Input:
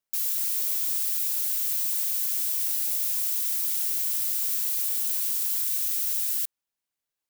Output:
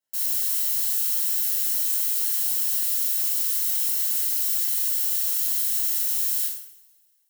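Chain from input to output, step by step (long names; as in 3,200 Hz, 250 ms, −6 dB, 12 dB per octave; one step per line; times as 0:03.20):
notch comb filter 1,200 Hz
coupled-rooms reverb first 0.62 s, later 2 s, from −25 dB, DRR −7.5 dB
level −4 dB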